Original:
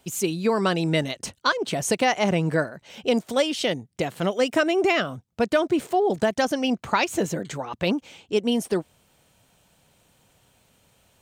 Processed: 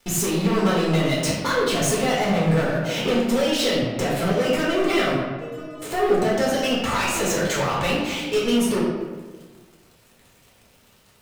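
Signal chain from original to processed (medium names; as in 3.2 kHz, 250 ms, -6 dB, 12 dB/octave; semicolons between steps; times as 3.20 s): 6.52–8.52 s: peaking EQ 240 Hz -13 dB 2.2 oct; compression 4:1, threshold -33 dBFS, peak gain reduction 14.5 dB; waveshaping leveller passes 5; 5.14–5.82 s: inharmonic resonator 150 Hz, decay 0.71 s, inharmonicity 0.008; reverberation RT60 1.4 s, pre-delay 4 ms, DRR -7 dB; trim -7.5 dB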